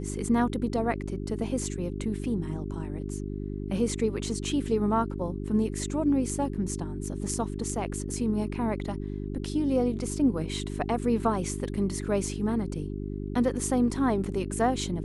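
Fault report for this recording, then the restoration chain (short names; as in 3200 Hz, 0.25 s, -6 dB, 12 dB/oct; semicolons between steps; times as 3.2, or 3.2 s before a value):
hum 50 Hz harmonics 8 -34 dBFS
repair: de-hum 50 Hz, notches 8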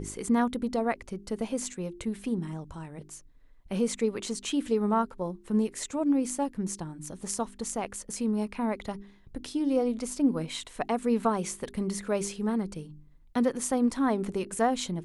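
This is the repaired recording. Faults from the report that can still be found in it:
none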